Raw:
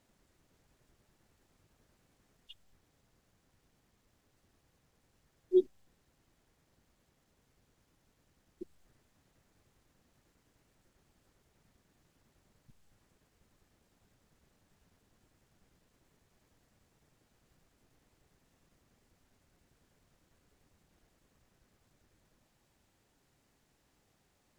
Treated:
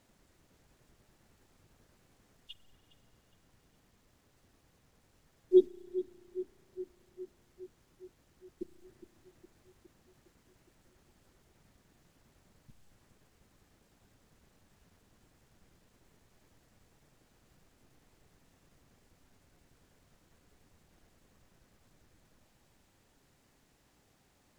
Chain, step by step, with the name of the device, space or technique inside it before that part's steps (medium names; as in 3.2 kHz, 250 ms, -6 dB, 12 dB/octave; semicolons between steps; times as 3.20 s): dub delay into a spring reverb (filtered feedback delay 412 ms, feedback 68%, level -13.5 dB; spring tank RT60 3.6 s, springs 34 ms, DRR 17 dB); trim +4 dB